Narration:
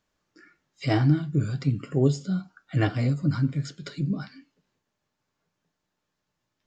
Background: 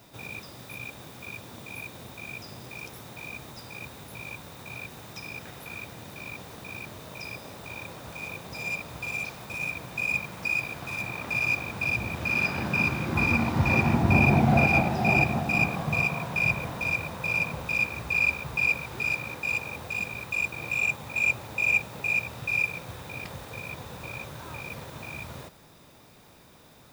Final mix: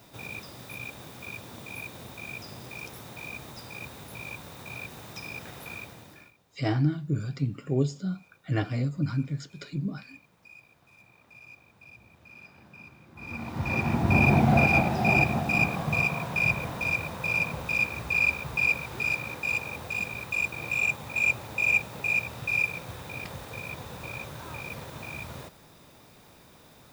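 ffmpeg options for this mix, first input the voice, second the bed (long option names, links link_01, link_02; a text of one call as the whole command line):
ffmpeg -i stem1.wav -i stem2.wav -filter_complex "[0:a]adelay=5750,volume=-4dB[link_01];[1:a]volume=24dB,afade=type=out:start_time=5.69:duration=0.64:silence=0.0630957,afade=type=in:start_time=13.16:duration=1.15:silence=0.0630957[link_02];[link_01][link_02]amix=inputs=2:normalize=0" out.wav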